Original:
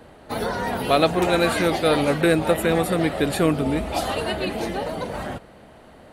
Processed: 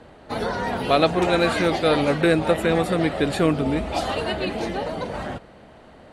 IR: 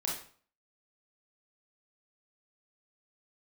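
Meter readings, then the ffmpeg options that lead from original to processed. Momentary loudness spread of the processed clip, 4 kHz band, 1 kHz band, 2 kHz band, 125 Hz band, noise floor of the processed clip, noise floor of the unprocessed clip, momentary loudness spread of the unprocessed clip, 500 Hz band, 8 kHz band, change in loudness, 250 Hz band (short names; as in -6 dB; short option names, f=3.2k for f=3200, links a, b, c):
10 LU, 0.0 dB, 0.0 dB, 0.0 dB, 0.0 dB, -48 dBFS, -48 dBFS, 10 LU, 0.0 dB, -5.0 dB, 0.0 dB, 0.0 dB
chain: -af "lowpass=7.3k"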